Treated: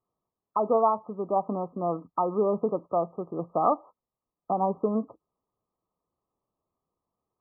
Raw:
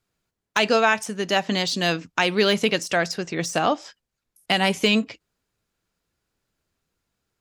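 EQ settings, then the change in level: brick-wall FIR low-pass 1300 Hz; tilt +3 dB/oct; 0.0 dB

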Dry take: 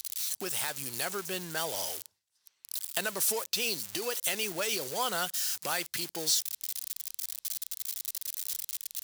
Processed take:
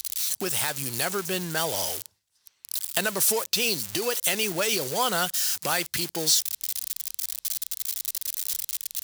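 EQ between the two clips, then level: low shelf 160 Hz +9 dB; +6.0 dB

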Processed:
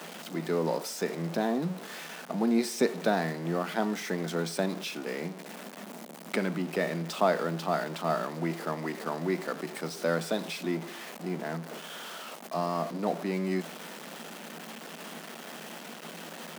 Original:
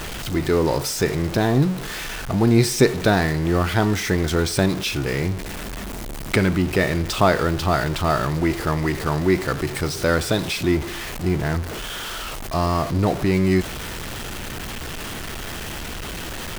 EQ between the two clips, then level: rippled Chebyshev high-pass 160 Hz, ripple 6 dB; -6.0 dB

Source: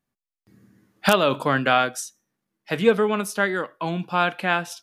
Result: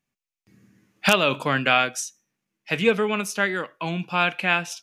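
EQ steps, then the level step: fifteen-band EQ 160 Hz +3 dB, 2500 Hz +10 dB, 6300 Hz +7 dB; -3.0 dB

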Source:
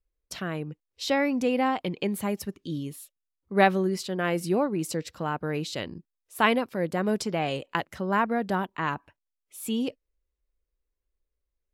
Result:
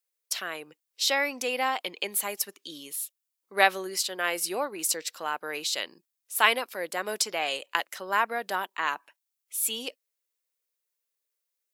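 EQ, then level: HPF 400 Hz 12 dB/oct; tilt +3.5 dB/oct; 0.0 dB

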